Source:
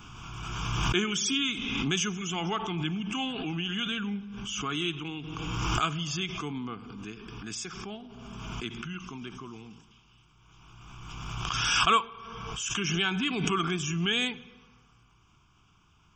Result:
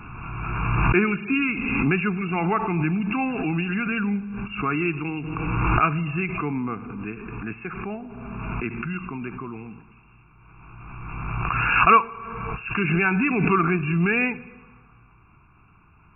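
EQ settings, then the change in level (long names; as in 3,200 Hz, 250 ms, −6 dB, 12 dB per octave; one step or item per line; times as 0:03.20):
linear-phase brick-wall low-pass 2,800 Hz
+8.5 dB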